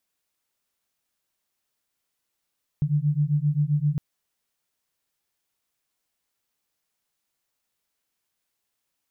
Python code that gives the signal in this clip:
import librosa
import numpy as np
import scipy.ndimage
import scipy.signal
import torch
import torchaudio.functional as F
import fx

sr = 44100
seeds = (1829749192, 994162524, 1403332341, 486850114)

y = fx.two_tone_beats(sr, length_s=1.16, hz=144.0, beat_hz=7.6, level_db=-23.0)